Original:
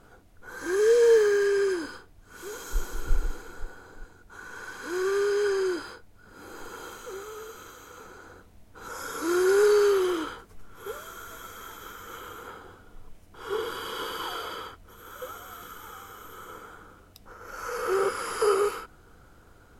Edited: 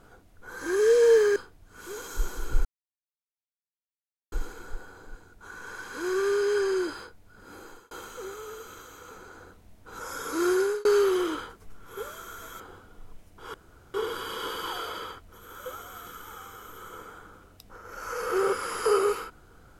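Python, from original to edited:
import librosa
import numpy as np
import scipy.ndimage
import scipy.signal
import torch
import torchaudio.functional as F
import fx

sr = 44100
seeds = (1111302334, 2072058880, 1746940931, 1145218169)

y = fx.edit(x, sr, fx.cut(start_s=1.36, length_s=0.56),
    fx.insert_silence(at_s=3.21, length_s=1.67),
    fx.fade_out_span(start_s=6.42, length_s=0.38),
    fx.fade_out_span(start_s=9.4, length_s=0.34),
    fx.cut(start_s=11.49, length_s=1.07),
    fx.insert_room_tone(at_s=13.5, length_s=0.4), tone=tone)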